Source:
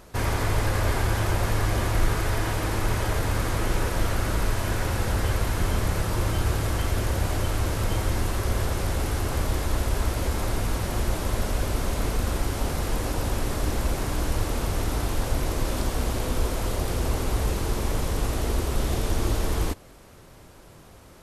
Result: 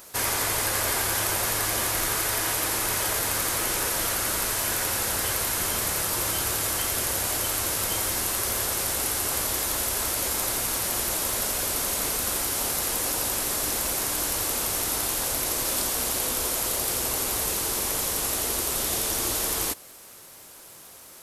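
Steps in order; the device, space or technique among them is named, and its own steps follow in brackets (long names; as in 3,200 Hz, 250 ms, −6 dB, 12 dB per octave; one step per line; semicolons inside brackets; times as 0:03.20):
turntable without a phono preamp (RIAA equalisation recording; white noise bed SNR 38 dB)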